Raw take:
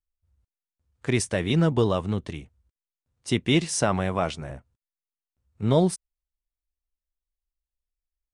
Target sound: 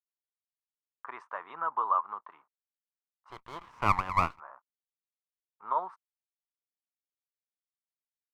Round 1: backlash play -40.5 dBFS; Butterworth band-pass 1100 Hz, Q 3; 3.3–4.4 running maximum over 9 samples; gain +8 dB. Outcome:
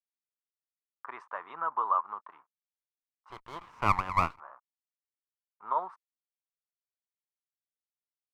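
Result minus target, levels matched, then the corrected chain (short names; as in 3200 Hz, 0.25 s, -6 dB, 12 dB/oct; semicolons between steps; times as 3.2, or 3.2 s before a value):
backlash: distortion +7 dB
backlash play -48 dBFS; Butterworth band-pass 1100 Hz, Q 3; 3.3–4.4 running maximum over 9 samples; gain +8 dB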